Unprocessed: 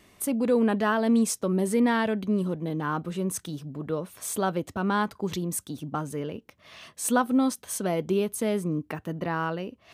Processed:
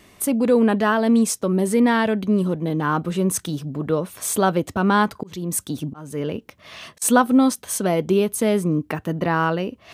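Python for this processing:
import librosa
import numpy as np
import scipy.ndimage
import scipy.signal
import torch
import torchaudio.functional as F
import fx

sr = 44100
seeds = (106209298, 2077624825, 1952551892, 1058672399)

p1 = fx.rider(x, sr, range_db=5, speed_s=2.0)
p2 = x + (p1 * librosa.db_to_amplitude(1.0))
y = fx.auto_swell(p2, sr, attack_ms=378.0, at=(4.85, 7.02))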